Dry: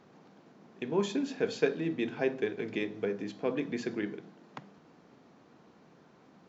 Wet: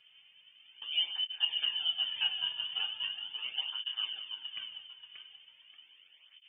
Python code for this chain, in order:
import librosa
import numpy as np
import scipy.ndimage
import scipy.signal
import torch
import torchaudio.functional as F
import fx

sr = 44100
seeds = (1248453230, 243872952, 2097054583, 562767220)

p1 = scipy.signal.medfilt(x, 15)
p2 = fx.peak_eq(p1, sr, hz=2200.0, db=-4.0, octaves=2.8)
p3 = fx.freq_invert(p2, sr, carrier_hz=3300)
p4 = fx.air_absorb(p3, sr, metres=350.0, at=(3.07, 3.58))
p5 = p4 + fx.echo_thinned(p4, sr, ms=583, feedback_pct=37, hz=220.0, wet_db=-6.0, dry=0)
p6 = fx.room_shoebox(p5, sr, seeds[0], volume_m3=200.0, walls='mixed', distance_m=0.55)
y = fx.flanger_cancel(p6, sr, hz=0.39, depth_ms=3.9)